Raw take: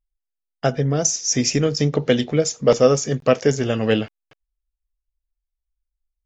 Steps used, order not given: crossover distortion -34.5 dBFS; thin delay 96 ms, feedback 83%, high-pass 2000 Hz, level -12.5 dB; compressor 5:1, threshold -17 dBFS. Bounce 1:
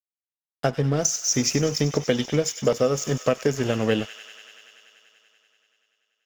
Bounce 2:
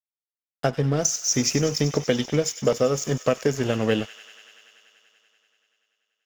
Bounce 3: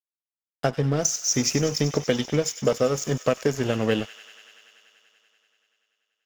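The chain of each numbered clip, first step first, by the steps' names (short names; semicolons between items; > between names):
crossover distortion > thin delay > compressor; crossover distortion > compressor > thin delay; compressor > crossover distortion > thin delay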